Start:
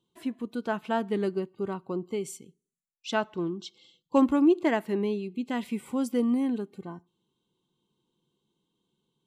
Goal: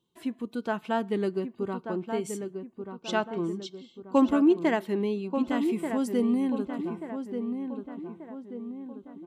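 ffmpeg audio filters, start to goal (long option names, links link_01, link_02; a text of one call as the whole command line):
ffmpeg -i in.wav -filter_complex "[0:a]asplit=2[link_01][link_02];[link_02]adelay=1185,lowpass=frequency=1800:poles=1,volume=-7dB,asplit=2[link_03][link_04];[link_04]adelay=1185,lowpass=frequency=1800:poles=1,volume=0.5,asplit=2[link_05][link_06];[link_06]adelay=1185,lowpass=frequency=1800:poles=1,volume=0.5,asplit=2[link_07][link_08];[link_08]adelay=1185,lowpass=frequency=1800:poles=1,volume=0.5,asplit=2[link_09][link_10];[link_10]adelay=1185,lowpass=frequency=1800:poles=1,volume=0.5,asplit=2[link_11][link_12];[link_12]adelay=1185,lowpass=frequency=1800:poles=1,volume=0.5[link_13];[link_01][link_03][link_05][link_07][link_09][link_11][link_13]amix=inputs=7:normalize=0" out.wav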